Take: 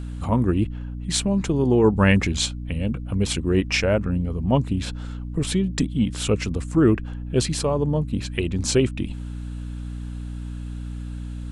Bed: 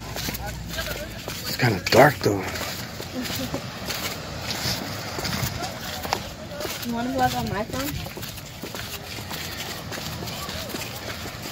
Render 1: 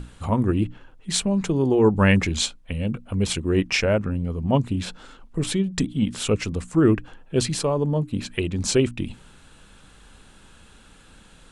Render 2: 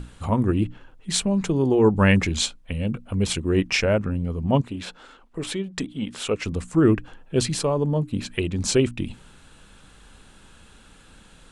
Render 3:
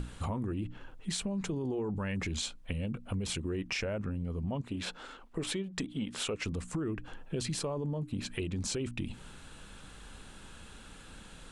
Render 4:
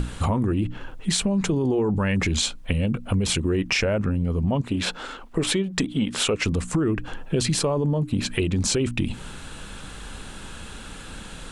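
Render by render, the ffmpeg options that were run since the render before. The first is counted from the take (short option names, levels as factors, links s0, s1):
-af "bandreject=f=60:t=h:w=6,bandreject=f=120:t=h:w=6,bandreject=f=180:t=h:w=6,bandreject=f=240:t=h:w=6,bandreject=f=300:t=h:w=6"
-filter_complex "[0:a]asettb=1/sr,asplit=3[s0][s1][s2];[s0]atrim=end=4.614[s3];[s1]atrim=start=4.61:end=6.46,asetpts=PTS-STARTPTS,afade=t=in:d=0.004:c=qsin,afade=t=out:st=1.846:d=0.004:c=qsin,bass=f=250:g=-11,treble=f=4000:g=-5[s4];[s2]atrim=start=6.456[s5];[s3][s4]acrossfade=d=0.004:c1=hsin:c2=qsin[s6];[s6][s5]acrossfade=d=0.004:c1=qsin:c2=hsin"
-af "alimiter=limit=0.119:level=0:latency=1:release=21,acompressor=threshold=0.0224:ratio=4"
-af "volume=3.98"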